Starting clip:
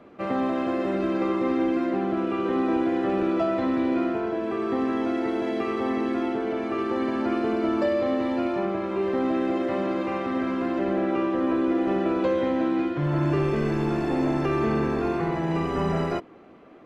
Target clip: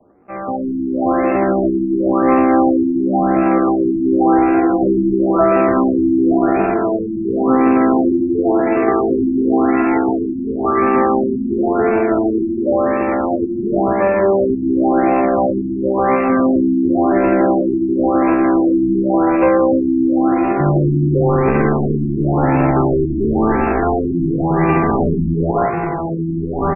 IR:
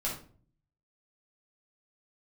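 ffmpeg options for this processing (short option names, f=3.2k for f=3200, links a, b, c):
-filter_complex "[0:a]acrossover=split=150|540|2500[a][b][c][d];[d]aexciter=amount=9.4:drive=8.4:freq=4.5k[e];[a][b][c][e]amix=inputs=4:normalize=0,adynamicsmooth=sensitivity=7.5:basefreq=520,aecho=1:1:1012:0.596,dynaudnorm=f=170:g=5:m=15dB,equalizer=f=260:w=0.33:g=-5.5,atempo=0.63,equalizer=f=770:w=7.2:g=6,afftfilt=real='re*lt(b*sr/1024,350*pow(2800/350,0.5+0.5*sin(2*PI*0.94*pts/sr)))':imag='im*lt(b*sr/1024,350*pow(2800/350,0.5+0.5*sin(2*PI*0.94*pts/sr)))':win_size=1024:overlap=0.75,volume=3dB"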